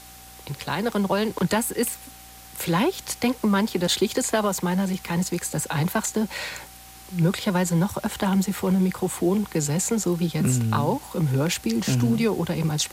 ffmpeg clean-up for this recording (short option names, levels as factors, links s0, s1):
-af "bandreject=f=59.8:t=h:w=4,bandreject=f=119.6:t=h:w=4,bandreject=f=179.4:t=h:w=4,bandreject=f=239.2:t=h:w=4,bandreject=f=299:t=h:w=4,bandreject=f=770:w=30,afwtdn=0.0056"